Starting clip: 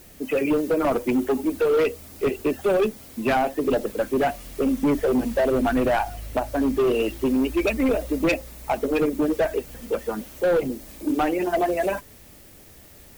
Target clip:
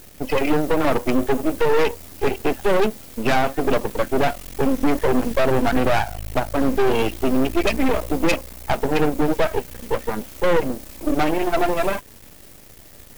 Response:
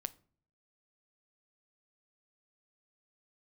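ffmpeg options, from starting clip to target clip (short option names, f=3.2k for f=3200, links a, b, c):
-af "aeval=exprs='max(val(0),0)':c=same,volume=7dB"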